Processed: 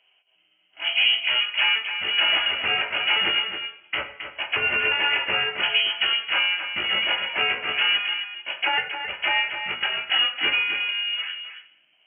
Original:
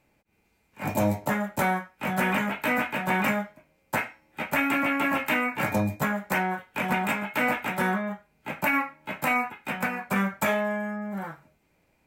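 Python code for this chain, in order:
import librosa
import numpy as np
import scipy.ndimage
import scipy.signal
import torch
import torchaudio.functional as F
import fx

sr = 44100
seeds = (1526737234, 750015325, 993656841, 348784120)

y = fx.pitch_trill(x, sr, semitones=3.0, every_ms=351)
y = fx.air_absorb(y, sr, metres=490.0)
y = y + 10.0 ** (-8.5 / 20.0) * np.pad(y, (int(268 * sr / 1000.0), 0))[:len(y)]
y = fx.freq_invert(y, sr, carrier_hz=3100)
y = scipy.signal.sosfilt(scipy.signal.butter(2, 57.0, 'highpass', fs=sr, output='sos'), y)
y = fx.low_shelf(y, sr, hz=160.0, db=-5.0)
y = fx.notch(y, sr, hz=1100.0, q=8.8)
y = fx.rev_double_slope(y, sr, seeds[0], early_s=0.68, late_s=1.8, knee_db=-18, drr_db=9.0)
y = y * 10.0 ** (5.0 / 20.0)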